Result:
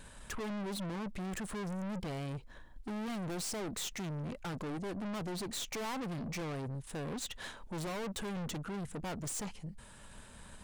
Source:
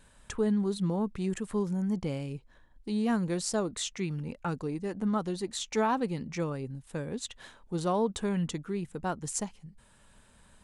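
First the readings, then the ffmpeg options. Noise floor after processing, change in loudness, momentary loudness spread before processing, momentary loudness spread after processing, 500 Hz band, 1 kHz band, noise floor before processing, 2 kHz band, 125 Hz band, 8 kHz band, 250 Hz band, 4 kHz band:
-54 dBFS, -7.5 dB, 10 LU, 9 LU, -9.5 dB, -8.0 dB, -60 dBFS, -2.5 dB, -6.0 dB, -4.0 dB, -8.5 dB, -2.5 dB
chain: -af "aeval=exprs='(tanh(178*val(0)+0.3)-tanh(0.3))/178':c=same,volume=2.37"

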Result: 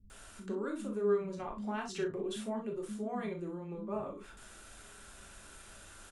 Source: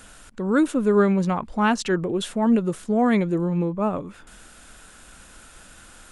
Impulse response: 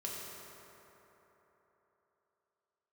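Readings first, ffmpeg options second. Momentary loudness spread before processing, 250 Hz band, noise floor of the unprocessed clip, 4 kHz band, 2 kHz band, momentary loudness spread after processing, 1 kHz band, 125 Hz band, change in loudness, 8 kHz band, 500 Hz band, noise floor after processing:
7 LU, -18.0 dB, -48 dBFS, -13.5 dB, -16.5 dB, 19 LU, -16.5 dB, -19.0 dB, -15.5 dB, -11.0 dB, -11.5 dB, -54 dBFS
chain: -filter_complex "[0:a]acompressor=threshold=0.0251:ratio=3,asplit=2[s0][s1];[s1]adelay=37,volume=0.224[s2];[s0][s2]amix=inputs=2:normalize=0,acrossover=split=210[s3][s4];[s4]adelay=100[s5];[s3][s5]amix=inputs=2:normalize=0[s6];[1:a]atrim=start_sample=2205,atrim=end_sample=3087[s7];[s6][s7]afir=irnorm=-1:irlink=0,volume=0.668"

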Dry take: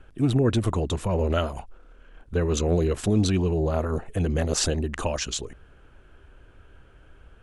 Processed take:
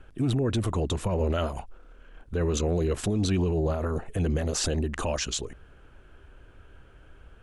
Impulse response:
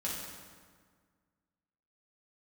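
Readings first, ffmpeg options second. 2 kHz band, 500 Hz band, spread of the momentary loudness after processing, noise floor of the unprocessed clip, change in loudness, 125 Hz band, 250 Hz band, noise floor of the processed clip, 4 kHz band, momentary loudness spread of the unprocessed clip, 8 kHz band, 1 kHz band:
-2.5 dB, -3.0 dB, 6 LU, -54 dBFS, -2.5 dB, -2.5 dB, -3.0 dB, -54 dBFS, -2.0 dB, 8 LU, -2.0 dB, -2.5 dB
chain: -af "alimiter=limit=0.119:level=0:latency=1:release=19"

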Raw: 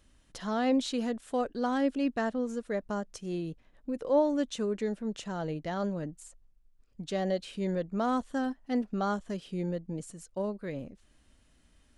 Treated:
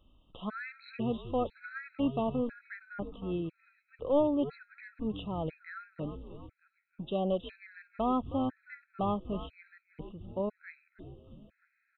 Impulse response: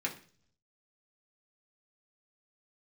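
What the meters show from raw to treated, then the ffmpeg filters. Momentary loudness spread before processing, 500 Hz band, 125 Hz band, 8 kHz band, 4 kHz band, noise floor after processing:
13 LU, -2.5 dB, -1.5 dB, under -30 dB, -6.0 dB, -78 dBFS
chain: -filter_complex "[0:a]aeval=exprs='clip(val(0),-1,0.0562)':c=same,asplit=7[s0][s1][s2][s3][s4][s5][s6];[s1]adelay=316,afreqshift=-140,volume=0.211[s7];[s2]adelay=632,afreqshift=-280,volume=0.127[s8];[s3]adelay=948,afreqshift=-420,volume=0.0759[s9];[s4]adelay=1264,afreqshift=-560,volume=0.0457[s10];[s5]adelay=1580,afreqshift=-700,volume=0.0275[s11];[s6]adelay=1896,afreqshift=-840,volume=0.0164[s12];[s0][s7][s8][s9][s10][s11][s12]amix=inputs=7:normalize=0,aresample=8000,aresample=44100,afftfilt=real='re*gt(sin(2*PI*1*pts/sr)*(1-2*mod(floor(b*sr/1024/1300),2)),0)':imag='im*gt(sin(2*PI*1*pts/sr)*(1-2*mod(floor(b*sr/1024/1300),2)),0)':win_size=1024:overlap=0.75"

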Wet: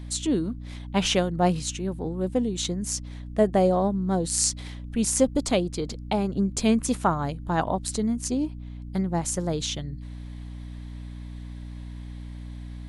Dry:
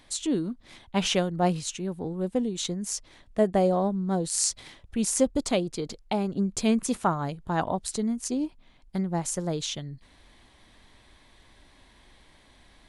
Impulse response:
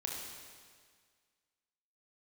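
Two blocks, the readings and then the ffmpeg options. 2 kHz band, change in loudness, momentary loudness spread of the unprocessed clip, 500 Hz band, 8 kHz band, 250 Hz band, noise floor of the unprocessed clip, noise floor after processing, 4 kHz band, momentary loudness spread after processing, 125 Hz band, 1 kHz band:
+2.0 dB, +2.0 dB, 11 LU, +2.0 dB, +2.0 dB, +2.0 dB, -58 dBFS, -38 dBFS, +2.0 dB, 17 LU, +3.5 dB, +2.0 dB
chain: -af "aeval=exprs='val(0)+0.0126*(sin(2*PI*60*n/s)+sin(2*PI*2*60*n/s)/2+sin(2*PI*3*60*n/s)/3+sin(2*PI*4*60*n/s)/4+sin(2*PI*5*60*n/s)/5)':c=same,volume=1.26"

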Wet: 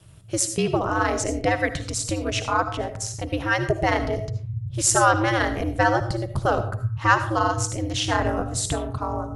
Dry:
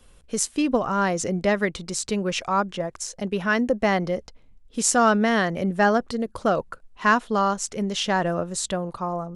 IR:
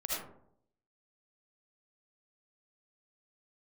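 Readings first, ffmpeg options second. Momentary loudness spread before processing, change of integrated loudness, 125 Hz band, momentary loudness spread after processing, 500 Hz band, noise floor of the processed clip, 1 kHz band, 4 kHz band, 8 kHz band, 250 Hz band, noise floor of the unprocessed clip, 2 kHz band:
9 LU, 0.0 dB, +6.5 dB, 9 LU, -1.0 dB, -37 dBFS, +1.0 dB, +1.0 dB, +2.0 dB, -3.5 dB, -53 dBFS, +1.0 dB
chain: -filter_complex "[0:a]asubboost=boost=10:cutoff=75,aeval=exprs='val(0)*sin(2*PI*110*n/s)':c=same,asplit=2[s0][s1];[1:a]atrim=start_sample=2205,afade=t=out:st=0.32:d=0.01,atrim=end_sample=14553,highshelf=f=6700:g=12[s2];[s1][s2]afir=irnorm=-1:irlink=0,volume=0.237[s3];[s0][s3]amix=inputs=2:normalize=0,volume=1.26"

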